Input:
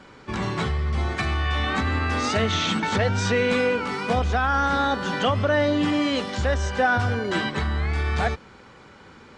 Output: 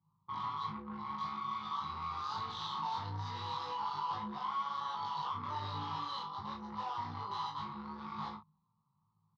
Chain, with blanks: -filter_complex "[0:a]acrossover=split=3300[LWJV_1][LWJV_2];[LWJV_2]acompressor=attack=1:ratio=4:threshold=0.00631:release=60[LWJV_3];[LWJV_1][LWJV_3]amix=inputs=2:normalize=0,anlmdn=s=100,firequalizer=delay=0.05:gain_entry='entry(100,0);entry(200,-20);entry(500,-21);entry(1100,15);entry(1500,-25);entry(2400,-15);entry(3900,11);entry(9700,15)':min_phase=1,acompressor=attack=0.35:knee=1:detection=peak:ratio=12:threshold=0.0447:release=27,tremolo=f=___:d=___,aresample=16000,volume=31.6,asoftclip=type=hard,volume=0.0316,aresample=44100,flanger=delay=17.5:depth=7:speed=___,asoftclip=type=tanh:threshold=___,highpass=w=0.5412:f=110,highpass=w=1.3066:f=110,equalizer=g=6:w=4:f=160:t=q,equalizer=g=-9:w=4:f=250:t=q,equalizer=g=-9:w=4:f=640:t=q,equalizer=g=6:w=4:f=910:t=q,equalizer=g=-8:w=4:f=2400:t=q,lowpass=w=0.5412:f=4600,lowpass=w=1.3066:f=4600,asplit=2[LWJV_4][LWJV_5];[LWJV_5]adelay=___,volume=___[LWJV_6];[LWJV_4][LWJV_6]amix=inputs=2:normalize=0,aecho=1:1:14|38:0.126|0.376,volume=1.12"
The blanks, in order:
140, 0.824, 1.2, 0.0119, 20, 0.75